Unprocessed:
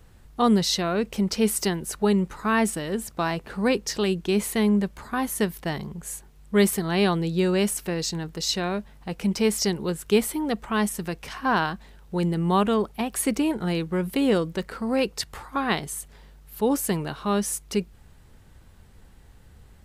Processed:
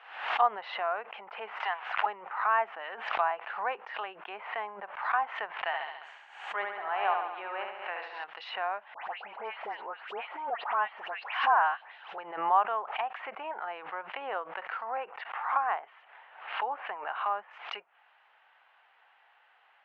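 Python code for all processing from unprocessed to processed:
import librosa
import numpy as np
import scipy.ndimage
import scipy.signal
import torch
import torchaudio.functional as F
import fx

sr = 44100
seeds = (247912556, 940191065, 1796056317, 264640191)

y = fx.chain(x, sr, fx.crossing_spikes(level_db=-19.0),
    fx.highpass(hz=890.0, slope=12),
    fx.leveller(passes=2), at=(1.6, 2.06))
y = fx.chain(y, sr, fx.highpass(hz=300.0, slope=6),
    fx.room_flutter(wall_m=11.9, rt60_s=0.92), at=(5.63, 8.24))
y = fx.chain(y, sr, fx.law_mismatch(coded='mu'),
    fx.dispersion(late='highs', ms=127.0, hz=2300.0), at=(8.94, 12.18))
y = fx.chain(y, sr, fx.air_absorb(metres=320.0),
    fx.band_squash(depth_pct=40), at=(14.97, 17.51))
y = fx.env_lowpass_down(y, sr, base_hz=1200.0, full_db=-22.5)
y = scipy.signal.sosfilt(scipy.signal.ellip(3, 1.0, 80, [740.0, 2900.0], 'bandpass', fs=sr, output='sos'), y)
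y = fx.pre_swell(y, sr, db_per_s=83.0)
y = y * librosa.db_to_amplitude(2.5)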